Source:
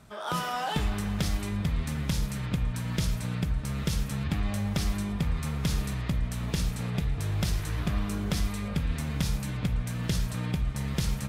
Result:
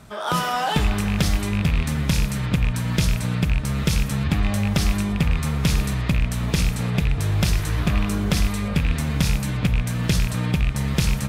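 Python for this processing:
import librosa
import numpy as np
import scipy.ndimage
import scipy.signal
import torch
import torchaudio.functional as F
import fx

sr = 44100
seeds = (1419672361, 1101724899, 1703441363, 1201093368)

y = fx.rattle_buzz(x, sr, strikes_db=-24.0, level_db=-25.0)
y = y * 10.0 ** (8.0 / 20.0)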